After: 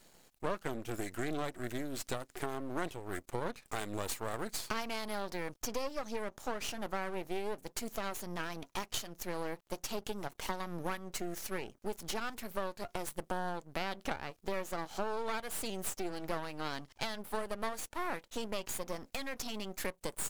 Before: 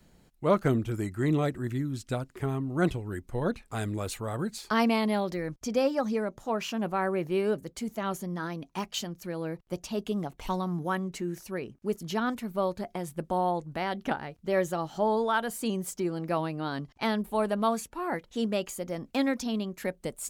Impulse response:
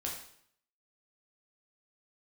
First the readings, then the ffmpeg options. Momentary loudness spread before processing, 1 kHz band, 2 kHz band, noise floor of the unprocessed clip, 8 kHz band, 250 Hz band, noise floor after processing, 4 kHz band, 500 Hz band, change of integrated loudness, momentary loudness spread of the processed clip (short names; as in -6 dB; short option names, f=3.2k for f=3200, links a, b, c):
8 LU, -8.0 dB, -5.0 dB, -62 dBFS, -0.5 dB, -12.5 dB, -69 dBFS, -3.0 dB, -9.5 dB, -9.0 dB, 3 LU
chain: -af "bass=f=250:g=-14,treble=f=4k:g=5,acompressor=threshold=-37dB:ratio=6,aeval=exprs='max(val(0),0)':c=same,volume=6dB"